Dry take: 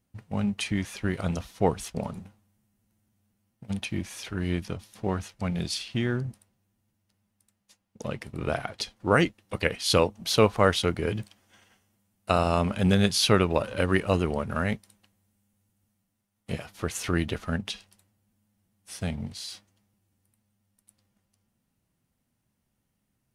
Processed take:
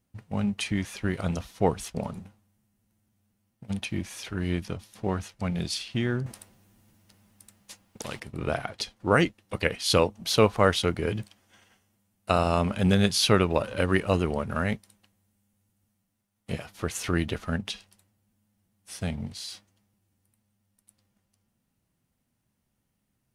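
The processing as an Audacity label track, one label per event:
6.260000	8.200000	spectral compressor 2:1

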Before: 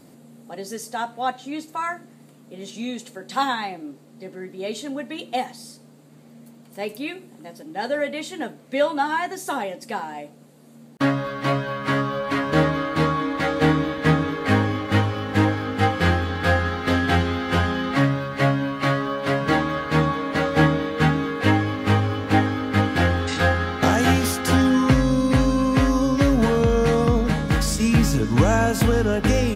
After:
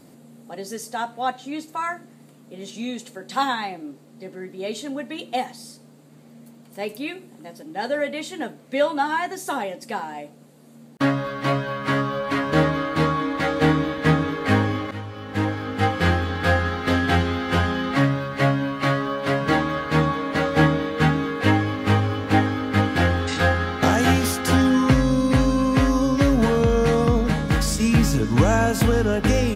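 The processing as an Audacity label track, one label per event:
14.910000	16.330000	fade in equal-power, from -17.5 dB

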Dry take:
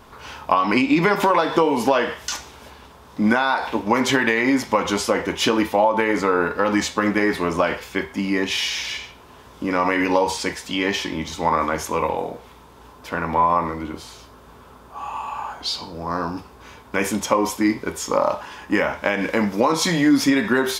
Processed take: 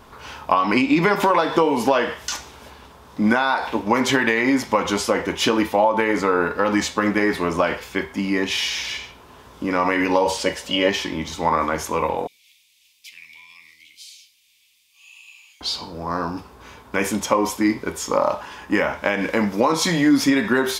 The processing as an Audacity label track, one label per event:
10.250000	10.900000	small resonant body resonances 560/2900 Hz, height 14 dB
12.270000	15.610000	elliptic high-pass 2300 Hz

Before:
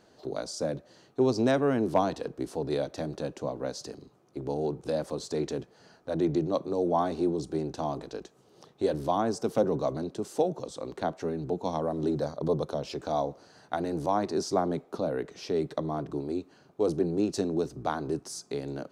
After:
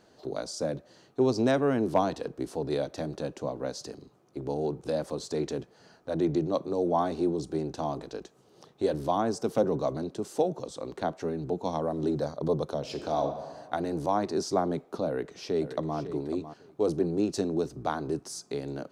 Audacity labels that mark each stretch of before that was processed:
12.790000	13.250000	reverb throw, RT60 1.5 s, DRR 5.5 dB
15.060000	15.980000	echo throw 0.55 s, feedback 15%, level -11.5 dB

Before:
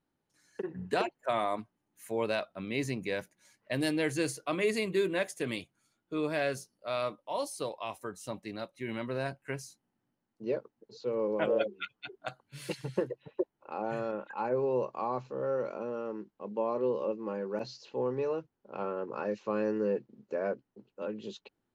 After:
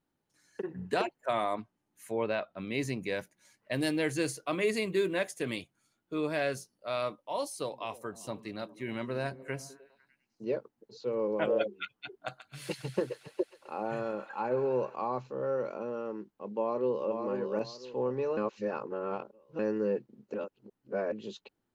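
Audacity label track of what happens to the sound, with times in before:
1.530000	2.590000	treble ducked by the level closes to 2900 Hz, closed at -30.5 dBFS
3.750000	6.200000	short-mantissa float mantissa of 6-bit
7.580000	10.450000	delay with a stepping band-pass 0.101 s, band-pass from 190 Hz, each repeat 0.7 oct, level -11 dB
12.130000	14.960000	thin delay 0.135 s, feedback 73%, high-pass 1400 Hz, level -9 dB
16.600000	17.130000	echo throw 0.5 s, feedback 25%, level -5 dB
18.370000	19.590000	reverse
20.340000	21.120000	reverse

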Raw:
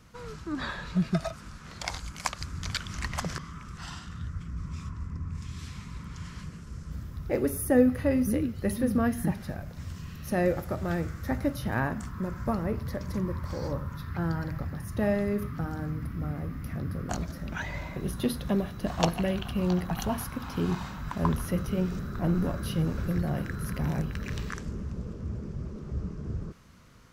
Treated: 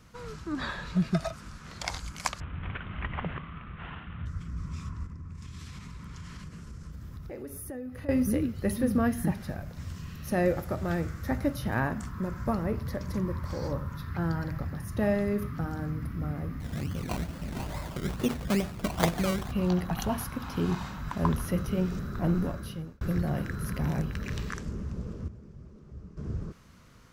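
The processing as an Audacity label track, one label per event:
2.400000	4.260000	CVSD 16 kbps
5.060000	8.090000	compressor 5:1, threshold -38 dBFS
16.600000	19.520000	decimation with a swept rate 20×, swing 60% 2.3 Hz
22.320000	23.010000	fade out
25.280000	26.170000	gain -11.5 dB

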